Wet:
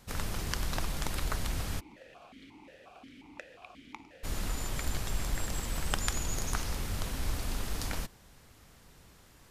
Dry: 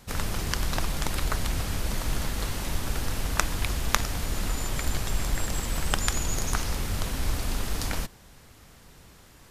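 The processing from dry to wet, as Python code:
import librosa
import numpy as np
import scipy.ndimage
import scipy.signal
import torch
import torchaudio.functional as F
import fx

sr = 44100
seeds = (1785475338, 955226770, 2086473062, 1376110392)

y = fx.vowel_held(x, sr, hz=5.6, at=(1.79, 4.23), fade=0.02)
y = F.gain(torch.from_numpy(y), -5.5).numpy()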